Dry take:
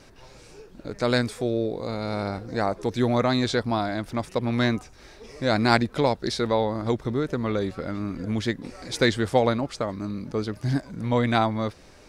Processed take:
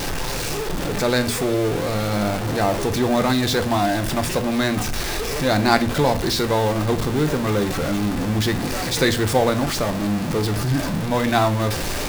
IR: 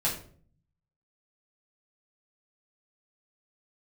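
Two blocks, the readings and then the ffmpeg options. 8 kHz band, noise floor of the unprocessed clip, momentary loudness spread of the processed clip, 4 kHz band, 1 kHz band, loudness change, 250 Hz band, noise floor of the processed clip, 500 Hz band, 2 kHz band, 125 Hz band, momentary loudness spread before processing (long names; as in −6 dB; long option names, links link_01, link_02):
+14.5 dB, −50 dBFS, 5 LU, +7.0 dB, +5.0 dB, +4.5 dB, +4.5 dB, −25 dBFS, +4.0 dB, +5.5 dB, +5.5 dB, 9 LU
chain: -filter_complex "[0:a]aeval=exprs='val(0)+0.5*0.0891*sgn(val(0))':channel_layout=same,asplit=2[link_01][link_02];[1:a]atrim=start_sample=2205[link_03];[link_02][link_03]afir=irnorm=-1:irlink=0,volume=-14dB[link_04];[link_01][link_04]amix=inputs=2:normalize=0,volume=-1dB"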